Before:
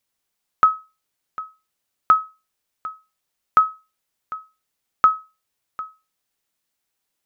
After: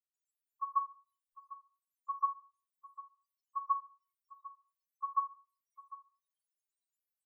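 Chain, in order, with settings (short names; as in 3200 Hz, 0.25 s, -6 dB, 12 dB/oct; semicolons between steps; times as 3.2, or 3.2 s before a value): high shelf 2700 Hz +4.5 dB; comb 5.1 ms, depth 77%; frequency shift -170 Hz; loudest bins only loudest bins 2; bands offset in time lows, highs 0.14 s, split 910 Hz; on a send at -6.5 dB: reverb RT60 0.45 s, pre-delay 5 ms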